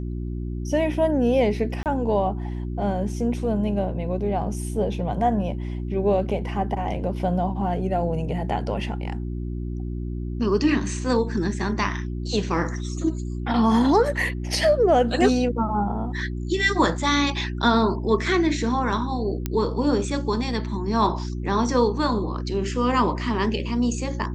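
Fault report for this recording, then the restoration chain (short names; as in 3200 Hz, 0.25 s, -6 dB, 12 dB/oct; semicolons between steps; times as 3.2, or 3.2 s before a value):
hum 60 Hz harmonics 6 -29 dBFS
1.83–1.86 gap 28 ms
19.46 pop -11 dBFS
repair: de-click; de-hum 60 Hz, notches 6; interpolate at 1.83, 28 ms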